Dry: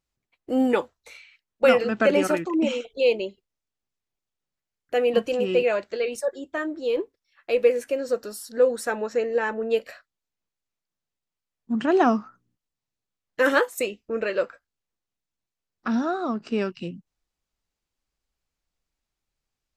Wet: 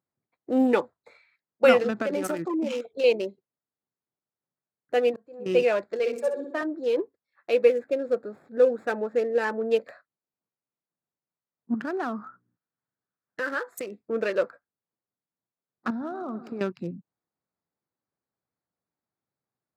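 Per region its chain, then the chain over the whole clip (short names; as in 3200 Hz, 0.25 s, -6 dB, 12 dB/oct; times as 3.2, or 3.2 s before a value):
1.9–3.04 high shelf 9400 Hz +11.5 dB + compressor 4:1, threshold -24 dBFS
4.99–5.46 auto swell 0.672 s + upward expander, over -31 dBFS
5.99–6.63 HPF 210 Hz + high shelf 4800 Hz -5.5 dB + flutter echo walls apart 10.8 m, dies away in 0.65 s
7.69–9.45 median filter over 9 samples + bell 1000 Hz -6.5 dB 0.33 oct + mismatched tape noise reduction decoder only
11.74–13.99 bell 1500 Hz +9.5 dB 0.7 oct + compressor 2.5:1, threshold -32 dBFS
15.9–16.61 compressor 16:1, threshold -29 dBFS + warbling echo 0.106 s, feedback 57%, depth 95 cents, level -13.5 dB
whole clip: Wiener smoothing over 15 samples; HPF 110 Hz 24 dB/oct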